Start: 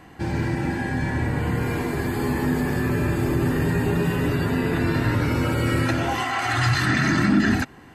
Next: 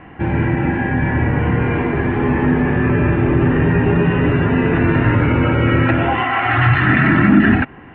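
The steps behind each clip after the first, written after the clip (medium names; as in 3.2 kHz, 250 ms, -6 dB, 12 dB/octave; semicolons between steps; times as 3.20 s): steep low-pass 2.9 kHz 48 dB/octave; trim +7.5 dB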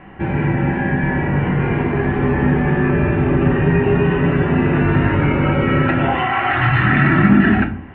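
simulated room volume 350 m³, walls furnished, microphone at 1.1 m; trim -2 dB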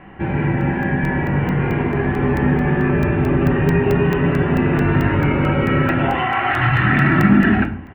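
speakerphone echo 100 ms, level -22 dB; crackling interface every 0.22 s, samples 64, zero, from 0.61 s; trim -1 dB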